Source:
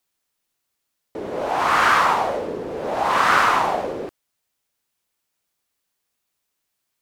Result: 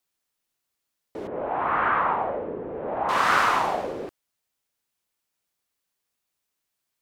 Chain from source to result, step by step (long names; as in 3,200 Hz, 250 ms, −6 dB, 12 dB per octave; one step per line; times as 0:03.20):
0:01.27–0:03.09: Gaussian smoothing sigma 4.1 samples
level −4 dB